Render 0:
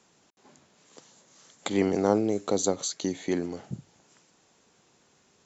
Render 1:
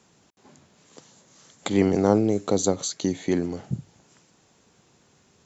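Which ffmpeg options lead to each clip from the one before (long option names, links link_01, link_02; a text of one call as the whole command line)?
ffmpeg -i in.wav -af "equalizer=frequency=83:width_type=o:width=2.6:gain=8,volume=2dB" out.wav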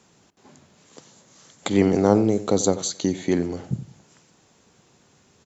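ffmpeg -i in.wav -filter_complex "[0:a]asplit=2[link_01][link_02];[link_02]adelay=90,lowpass=frequency=2300:poles=1,volume=-14.5dB,asplit=2[link_03][link_04];[link_04]adelay=90,lowpass=frequency=2300:poles=1,volume=0.31,asplit=2[link_05][link_06];[link_06]adelay=90,lowpass=frequency=2300:poles=1,volume=0.31[link_07];[link_01][link_03][link_05][link_07]amix=inputs=4:normalize=0,volume=2dB" out.wav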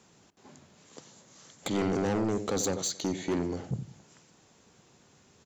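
ffmpeg -i in.wav -af "asoftclip=type=tanh:threshold=-21.5dB,volume=-2.5dB" out.wav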